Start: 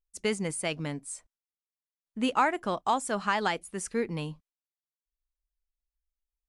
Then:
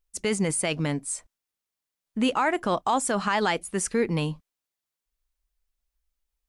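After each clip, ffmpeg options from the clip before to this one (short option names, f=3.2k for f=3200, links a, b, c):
-af "alimiter=limit=-22.5dB:level=0:latency=1:release=39,volume=8dB"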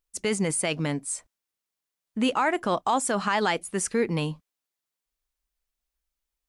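-af "lowshelf=f=62:g=-9.5"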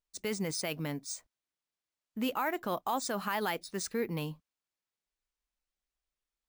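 -af "acrusher=samples=3:mix=1:aa=0.000001,volume=-8.5dB"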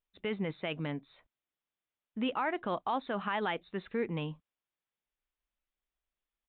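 -af "aresample=8000,aresample=44100"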